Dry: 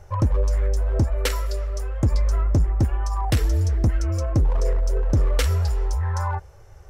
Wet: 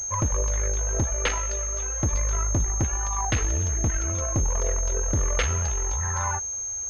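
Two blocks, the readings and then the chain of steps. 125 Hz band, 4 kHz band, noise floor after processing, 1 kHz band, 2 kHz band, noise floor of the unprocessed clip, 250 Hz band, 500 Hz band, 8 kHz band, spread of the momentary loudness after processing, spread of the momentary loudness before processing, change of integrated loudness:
−5.5 dB, −2.0 dB, −31 dBFS, +0.5 dB, +3.0 dB, −46 dBFS, −4.5 dB, −3.0 dB, +16.5 dB, 2 LU, 5 LU, −2.0 dB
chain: tilt shelving filter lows −6 dB
harmonic generator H 8 −24 dB, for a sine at −7 dBFS
switching amplifier with a slow clock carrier 6,400 Hz

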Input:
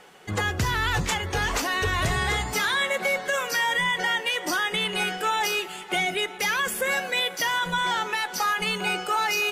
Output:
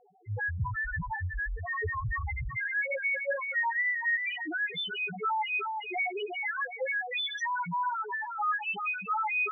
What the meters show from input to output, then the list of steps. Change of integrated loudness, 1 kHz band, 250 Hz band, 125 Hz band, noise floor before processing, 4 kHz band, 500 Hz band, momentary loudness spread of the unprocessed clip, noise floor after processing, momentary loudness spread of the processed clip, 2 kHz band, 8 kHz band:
−6.5 dB, −6.0 dB, −11.0 dB, −5.5 dB, −39 dBFS, −13.0 dB, −8.5 dB, 3 LU, −42 dBFS, 6 LU, −5.0 dB, below −25 dB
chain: echo with a time of its own for lows and highs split 2,700 Hz, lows 370 ms, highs 120 ms, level −5 dB
spectral peaks only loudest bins 1
level +2.5 dB

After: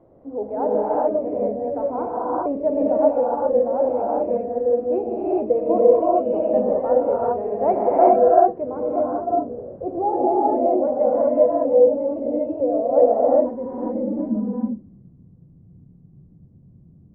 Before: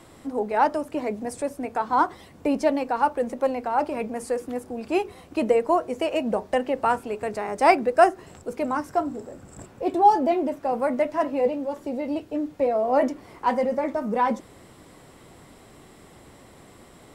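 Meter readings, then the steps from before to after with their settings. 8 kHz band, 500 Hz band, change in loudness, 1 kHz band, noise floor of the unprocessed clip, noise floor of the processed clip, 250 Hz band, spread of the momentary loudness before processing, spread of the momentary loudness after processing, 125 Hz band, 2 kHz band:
below −35 dB, +7.0 dB, +4.5 dB, +0.5 dB, −50 dBFS, −50 dBFS, +3.0 dB, 11 LU, 10 LU, can't be measured, below −15 dB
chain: low-pass filter sweep 580 Hz → 160 Hz, 0:12.96–0:14.96
reverb whose tail is shaped and stops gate 440 ms rising, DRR −6.5 dB
level −6.5 dB

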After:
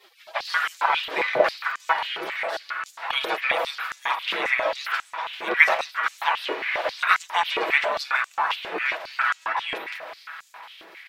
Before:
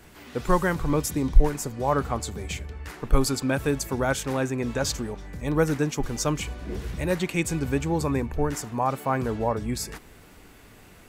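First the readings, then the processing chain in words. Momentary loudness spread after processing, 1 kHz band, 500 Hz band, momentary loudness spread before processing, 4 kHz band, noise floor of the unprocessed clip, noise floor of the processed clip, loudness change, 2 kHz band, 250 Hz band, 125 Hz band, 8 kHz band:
11 LU, +5.5 dB, −2.0 dB, 10 LU, +8.0 dB, −50 dBFS, −53 dBFS, +2.5 dB, +12.0 dB, −16.5 dB, below −30 dB, −12.5 dB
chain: gate on every frequency bin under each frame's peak −25 dB weak
high-shelf EQ 12,000 Hz +8 dB
comb filter 6.1 ms, depth 39%
tape wow and flutter 44 cents
high-frequency loss of the air 380 metres
feedback delay with all-pass diffusion 503 ms, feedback 55%, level −12.5 dB
boost into a limiter +22.5 dB
high-pass on a step sequencer 7.4 Hz 400–7,000 Hz
level −2 dB

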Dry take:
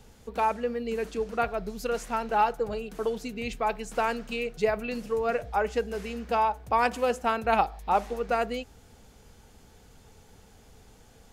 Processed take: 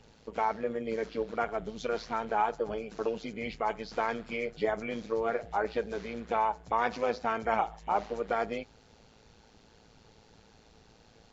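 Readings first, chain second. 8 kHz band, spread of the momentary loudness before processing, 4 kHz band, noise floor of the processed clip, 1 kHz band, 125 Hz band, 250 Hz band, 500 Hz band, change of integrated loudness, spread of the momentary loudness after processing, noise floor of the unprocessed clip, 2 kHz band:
can't be measured, 7 LU, −5.0 dB, −60 dBFS, −4.0 dB, −4.5 dB, −3.5 dB, −3.5 dB, −4.0 dB, 6 LU, −56 dBFS, −3.5 dB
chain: hearing-aid frequency compression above 1,800 Hz 1.5 to 1
amplitude modulation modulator 110 Hz, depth 55%
low-shelf EQ 110 Hz −8.5 dB
in parallel at +0.5 dB: brickwall limiter −22.5 dBFS, peak gain reduction 11 dB
on the sum: level −5 dB

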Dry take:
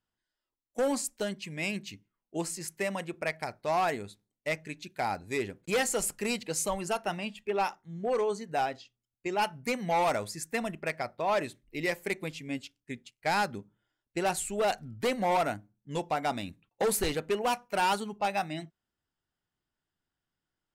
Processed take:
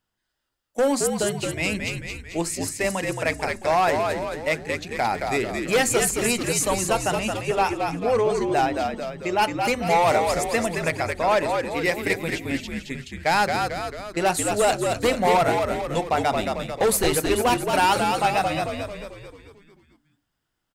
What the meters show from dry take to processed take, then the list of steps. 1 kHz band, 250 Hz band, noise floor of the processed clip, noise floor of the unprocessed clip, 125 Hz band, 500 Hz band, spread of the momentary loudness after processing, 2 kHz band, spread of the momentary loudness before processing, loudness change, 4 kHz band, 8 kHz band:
+9.0 dB, +9.0 dB, −78 dBFS, below −85 dBFS, +10.0 dB, +9.0 dB, 9 LU, +9.0 dB, 11 LU, +8.5 dB, +9.0 dB, +9.5 dB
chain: mains-hum notches 50/100/150/200/250/300/350/400 Hz
on a send: echo with shifted repeats 221 ms, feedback 53%, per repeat −65 Hz, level −4.5 dB
on the sum: level +7.5 dB

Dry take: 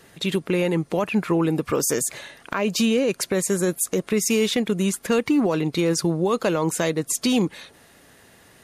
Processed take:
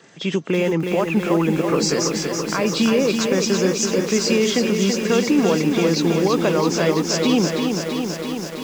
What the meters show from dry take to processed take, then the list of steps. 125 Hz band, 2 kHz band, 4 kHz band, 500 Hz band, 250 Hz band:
+3.5 dB, +4.0 dB, +5.5 dB, +4.0 dB, +4.0 dB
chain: hearing-aid frequency compression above 2,700 Hz 1.5 to 1
high-pass filter 130 Hz 24 dB per octave
feedback echo at a low word length 331 ms, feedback 80%, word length 7 bits, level −5 dB
level +2 dB

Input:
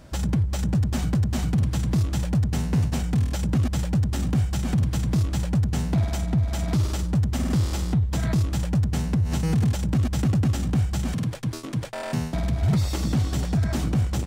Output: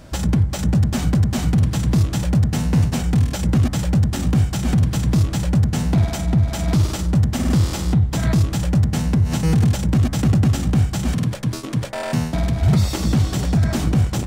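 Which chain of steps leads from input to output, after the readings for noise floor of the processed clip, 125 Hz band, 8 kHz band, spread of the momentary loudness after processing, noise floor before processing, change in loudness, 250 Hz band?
−28 dBFS, +5.5 dB, +6.0 dB, 4 LU, −32 dBFS, +5.5 dB, +5.5 dB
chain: hum removal 66.69 Hz, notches 33
level +6 dB

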